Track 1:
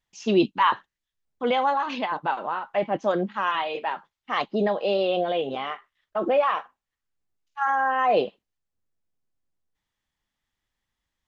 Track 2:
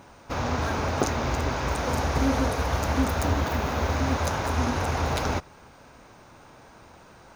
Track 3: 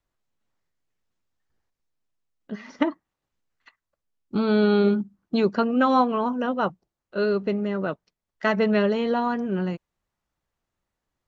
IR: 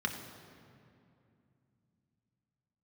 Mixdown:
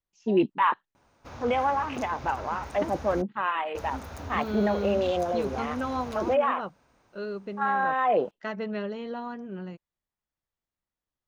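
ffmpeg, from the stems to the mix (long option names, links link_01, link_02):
-filter_complex "[0:a]afwtdn=0.02,volume=-2.5dB[link_01];[1:a]adelay=950,volume=-14.5dB,asplit=3[link_02][link_03][link_04];[link_02]atrim=end=3.22,asetpts=PTS-STARTPTS,afade=type=out:start_time=3.216:duration=0.004:curve=hsin[link_05];[link_03]atrim=start=3.22:end=3.75,asetpts=PTS-STARTPTS,volume=0[link_06];[link_04]atrim=start=3.75,asetpts=PTS-STARTPTS,afade=type=in:duration=0.004:curve=hsin[link_07];[link_05][link_06][link_07]concat=n=3:v=0:a=1[link_08];[2:a]volume=-11.5dB[link_09];[link_01][link_08][link_09]amix=inputs=3:normalize=0"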